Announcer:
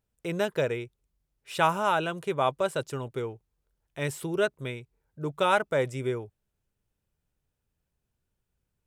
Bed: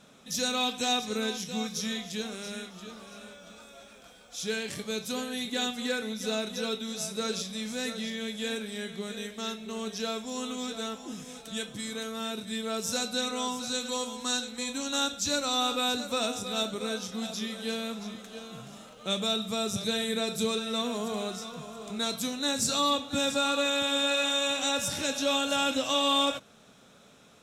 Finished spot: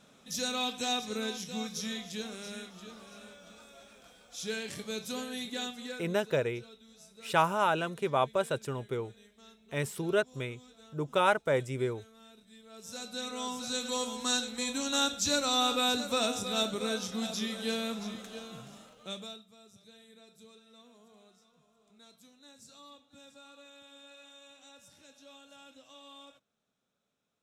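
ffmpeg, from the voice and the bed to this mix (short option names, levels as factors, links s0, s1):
-filter_complex "[0:a]adelay=5750,volume=0.794[s0];[1:a]volume=7.5,afade=t=out:st=5.36:d=0.92:silence=0.133352,afade=t=in:st=12.69:d=1.44:silence=0.0841395,afade=t=out:st=18.21:d=1.24:silence=0.0446684[s1];[s0][s1]amix=inputs=2:normalize=0"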